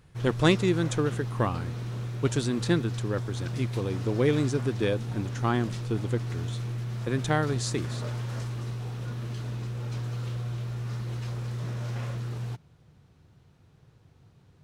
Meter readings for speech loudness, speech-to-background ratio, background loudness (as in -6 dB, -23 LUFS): -29.0 LUFS, 5.0 dB, -34.0 LUFS